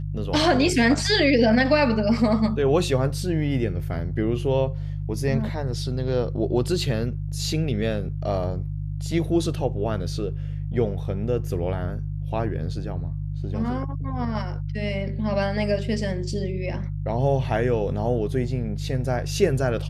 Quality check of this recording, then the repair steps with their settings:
mains hum 50 Hz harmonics 3 −29 dBFS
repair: hum removal 50 Hz, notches 3

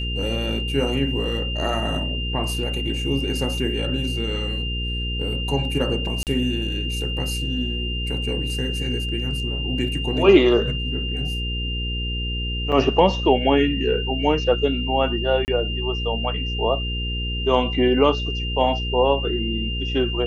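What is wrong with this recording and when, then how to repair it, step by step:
mains hum 60 Hz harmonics 8 −27 dBFS
whistle 2,800 Hz −28 dBFS
0:06.23–0:06.27: drop-out 38 ms
0:12.72–0:12.73: drop-out 6.3 ms
0:15.45–0:15.48: drop-out 29 ms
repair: notch filter 2,800 Hz, Q 30
hum removal 60 Hz, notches 8
repair the gap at 0:06.23, 38 ms
repair the gap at 0:12.72, 6.3 ms
repair the gap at 0:15.45, 29 ms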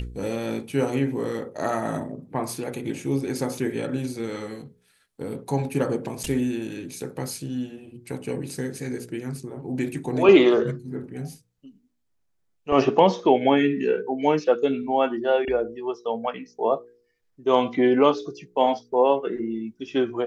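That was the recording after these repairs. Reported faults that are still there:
none of them is left

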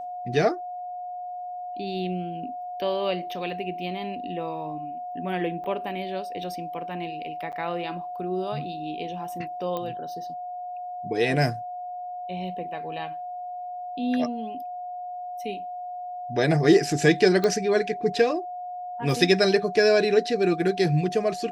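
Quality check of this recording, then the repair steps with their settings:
whistle 720 Hz −32 dBFS
0:05.64–0:05.65: drop-out 5.1 ms
0:07.52–0:07.53: drop-out 8.1 ms
0:09.77: click −18 dBFS
0:17.44: click −12 dBFS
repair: click removal
notch filter 720 Hz, Q 30
repair the gap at 0:05.64, 5.1 ms
repair the gap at 0:07.52, 8.1 ms

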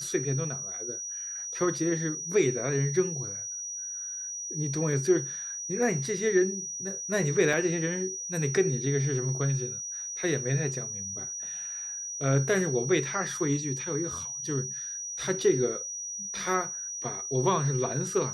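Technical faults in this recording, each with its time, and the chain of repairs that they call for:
whistle 5,800 Hz −34 dBFS
0:07.53: drop-out 2.7 ms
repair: notch filter 5,800 Hz, Q 30
repair the gap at 0:07.53, 2.7 ms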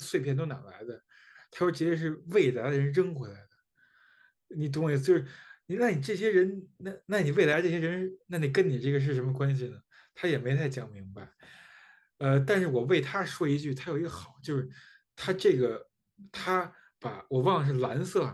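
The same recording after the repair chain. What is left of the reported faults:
none of them is left

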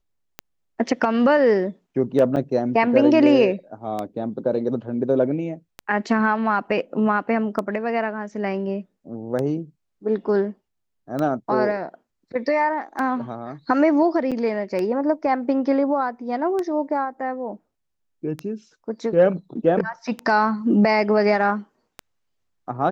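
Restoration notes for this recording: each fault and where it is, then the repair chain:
scratch tick 33 1/3 rpm −14 dBFS
0:02.36–0:02.37: drop-out 5.6 ms
0:14.31–0:14.32: drop-out 6.7 ms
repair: click removal
repair the gap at 0:02.36, 5.6 ms
repair the gap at 0:14.31, 6.7 ms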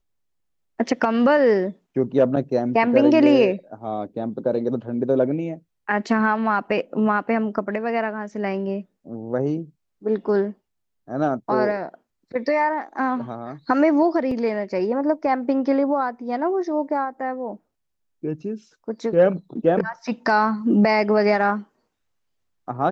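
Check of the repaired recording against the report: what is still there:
none of them is left

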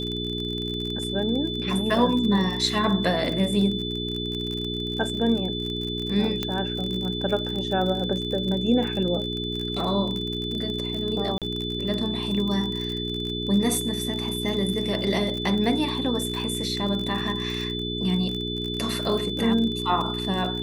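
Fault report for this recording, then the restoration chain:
surface crackle 39 per second −29 dBFS
mains hum 60 Hz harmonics 7 −31 dBFS
whistle 3,500 Hz −31 dBFS
0:06.43: click −12 dBFS
0:11.38–0:11.42: drop-out 37 ms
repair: click removal
notch filter 3,500 Hz, Q 30
hum removal 60 Hz, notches 7
repair the gap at 0:11.38, 37 ms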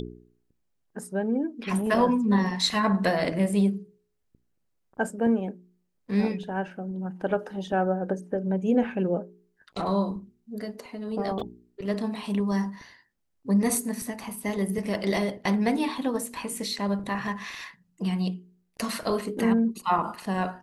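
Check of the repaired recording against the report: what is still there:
none of them is left

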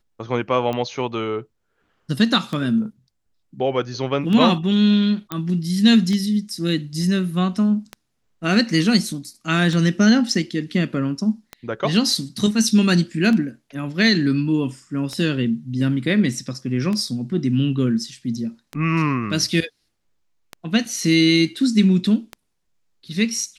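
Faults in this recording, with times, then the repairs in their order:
scratch tick 33 1/3 rpm −14 dBFS
0:05.32: click −11 dBFS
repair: click removal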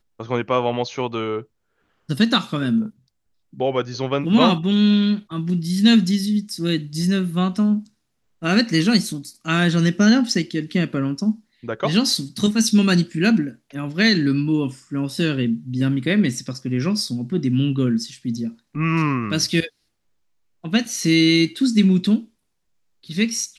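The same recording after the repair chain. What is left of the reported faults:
none of them is left

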